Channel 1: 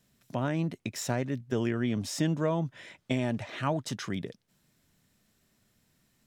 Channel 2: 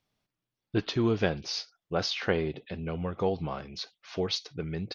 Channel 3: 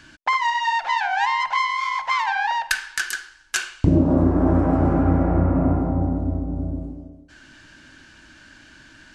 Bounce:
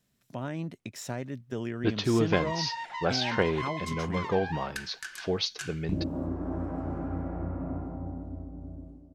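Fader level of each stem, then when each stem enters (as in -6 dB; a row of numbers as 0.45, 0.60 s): -5.0, +1.0, -15.5 dB; 0.00, 1.10, 2.05 s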